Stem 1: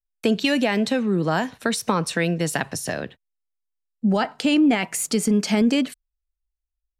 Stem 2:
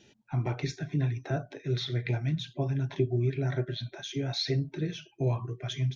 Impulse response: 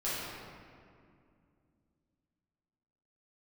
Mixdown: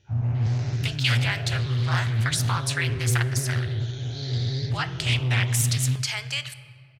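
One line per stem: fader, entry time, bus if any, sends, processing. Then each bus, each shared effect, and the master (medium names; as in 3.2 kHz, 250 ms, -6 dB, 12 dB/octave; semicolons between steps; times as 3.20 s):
+1.0 dB, 0.60 s, send -18.5 dB, Bessel high-pass 1.5 kHz, order 4
-13.5 dB, 0.00 s, send -17.5 dB, every event in the spectrogram widened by 480 ms; resonant low shelf 150 Hz +11.5 dB, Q 3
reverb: on, RT60 2.3 s, pre-delay 5 ms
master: loudspeaker Doppler distortion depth 0.39 ms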